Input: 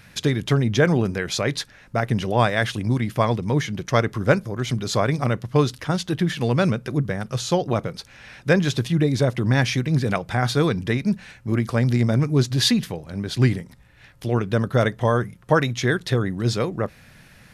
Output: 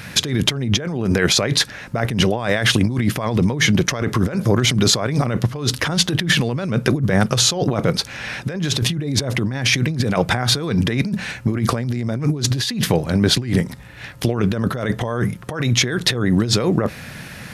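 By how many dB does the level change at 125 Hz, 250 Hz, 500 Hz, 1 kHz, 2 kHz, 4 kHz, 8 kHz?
+1.5, +3.0, 0.0, -0.5, +4.0, +9.5, +11.0 dB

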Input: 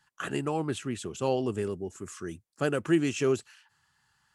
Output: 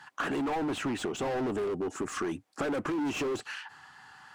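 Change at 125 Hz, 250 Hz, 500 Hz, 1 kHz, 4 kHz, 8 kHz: -7.5, -1.5, -3.0, +2.0, +0.5, -2.0 dB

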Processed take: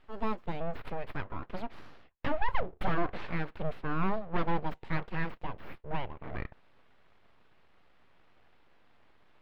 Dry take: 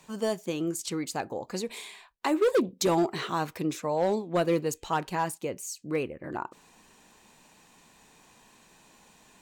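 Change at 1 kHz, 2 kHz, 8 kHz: -4.0 dB, -1.0 dB, under -30 dB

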